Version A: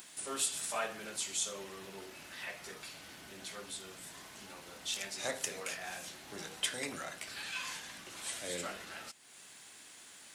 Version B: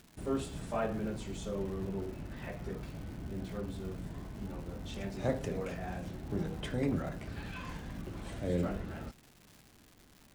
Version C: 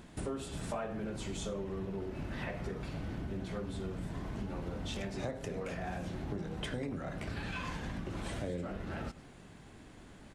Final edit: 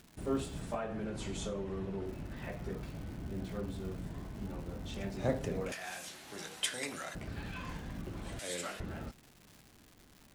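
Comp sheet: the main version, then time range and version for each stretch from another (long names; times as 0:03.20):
B
0:00.75–0:02.06: punch in from C
0:05.72–0:07.15: punch in from A
0:08.39–0:08.80: punch in from A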